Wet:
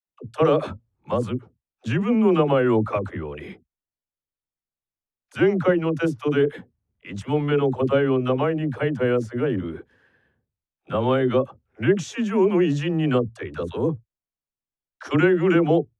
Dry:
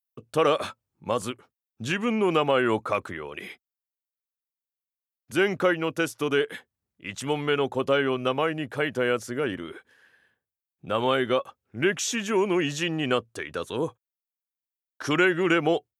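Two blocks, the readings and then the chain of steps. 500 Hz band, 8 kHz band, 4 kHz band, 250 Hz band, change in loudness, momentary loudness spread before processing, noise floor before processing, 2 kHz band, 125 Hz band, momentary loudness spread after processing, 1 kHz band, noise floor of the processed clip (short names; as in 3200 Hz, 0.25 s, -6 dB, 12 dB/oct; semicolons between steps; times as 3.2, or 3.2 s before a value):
+4.0 dB, n/a, -5.5 dB, +6.5 dB, +3.5 dB, 14 LU, under -85 dBFS, -3.0 dB, +10.0 dB, 14 LU, 0.0 dB, under -85 dBFS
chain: LPF 11000 Hz 12 dB/oct; tilt -3.5 dB/oct; dispersion lows, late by 75 ms, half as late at 410 Hz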